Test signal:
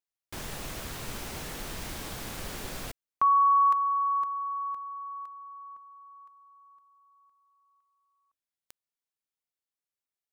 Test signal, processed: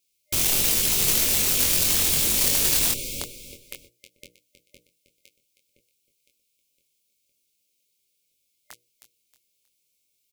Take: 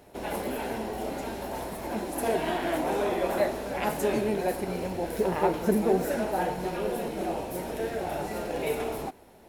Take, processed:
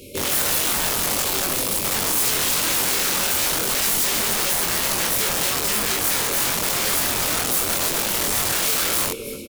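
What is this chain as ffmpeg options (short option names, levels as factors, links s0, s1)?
-filter_complex "[0:a]bandreject=f=60:t=h:w=6,bandreject=f=120:t=h:w=6,bandreject=f=180:t=h:w=6,bandreject=f=240:t=h:w=6,bandreject=f=300:t=h:w=6,bandreject=f=360:t=h:w=6,bandreject=f=420:t=h:w=6,bandreject=f=480:t=h:w=6,bandreject=f=540:t=h:w=6,bandreject=f=600:t=h:w=6,afftfilt=real='re*(1-between(b*sr/4096,600,2100))':imag='im*(1-between(b*sr/4096,600,2100))':win_size=4096:overlap=0.75,acompressor=threshold=0.0316:ratio=2.5:attack=86:release=804:knee=1:detection=peak,flanger=delay=8.1:depth=2.6:regen=-43:speed=0.33:shape=triangular,aeval=exprs='0.119*sin(PI/2*3.55*val(0)/0.119)':c=same,asplit=2[s0][s1];[s1]aecho=0:1:316|632|948:0.251|0.0804|0.0257[s2];[s0][s2]amix=inputs=2:normalize=0,aeval=exprs='(mod(13.3*val(0)+1,2)-1)/13.3':c=same,asplit=2[s3][s4];[s4]adelay=23,volume=0.631[s5];[s3][s5]amix=inputs=2:normalize=0,alimiter=limit=0.0794:level=0:latency=1:release=24,highshelf=f=2300:g=6.5,acontrast=63,adynamicequalizer=threshold=0.0251:dfrequency=5100:dqfactor=0.7:tfrequency=5100:tqfactor=0.7:attack=5:release=100:ratio=0.333:range=1.5:mode=boostabove:tftype=highshelf,volume=0.596"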